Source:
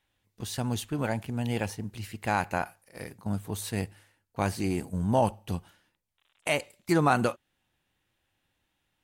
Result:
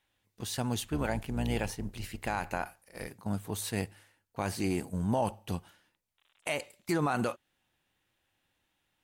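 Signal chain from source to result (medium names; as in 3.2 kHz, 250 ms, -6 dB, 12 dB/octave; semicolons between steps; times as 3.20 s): 0.79–3.08 s: octave divider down 2 oct, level -2 dB; bass shelf 200 Hz -4.5 dB; peak limiter -20 dBFS, peak gain reduction 9 dB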